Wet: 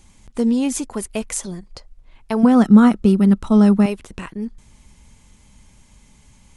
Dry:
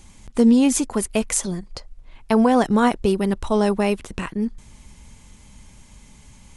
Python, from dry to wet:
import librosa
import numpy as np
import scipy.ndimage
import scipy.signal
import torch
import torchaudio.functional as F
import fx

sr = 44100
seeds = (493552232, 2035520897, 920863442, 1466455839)

y = fx.small_body(x, sr, hz=(210.0, 1300.0), ring_ms=40, db=14, at=(2.43, 3.86))
y = y * 10.0 ** (-3.5 / 20.0)